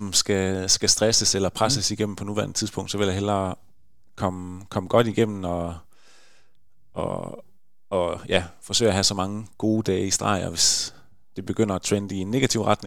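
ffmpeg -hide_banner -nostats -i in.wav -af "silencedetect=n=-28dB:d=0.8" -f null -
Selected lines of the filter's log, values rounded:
silence_start: 5.73
silence_end: 6.97 | silence_duration: 1.23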